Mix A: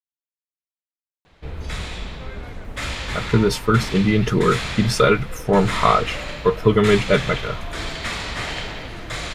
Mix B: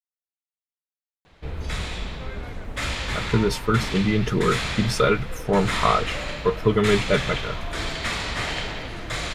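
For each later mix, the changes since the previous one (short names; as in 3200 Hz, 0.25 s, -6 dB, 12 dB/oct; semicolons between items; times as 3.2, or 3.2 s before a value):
speech -4.0 dB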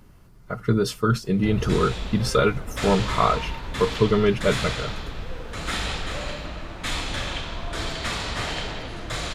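speech: entry -2.65 s; master: add bell 2100 Hz -4.5 dB 0.58 oct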